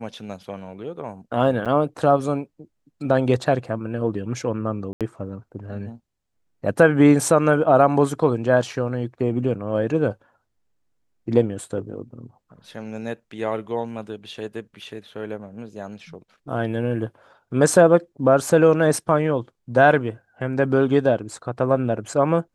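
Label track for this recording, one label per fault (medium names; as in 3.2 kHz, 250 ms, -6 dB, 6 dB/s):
1.650000	1.660000	dropout 7.2 ms
4.930000	5.010000	dropout 77 ms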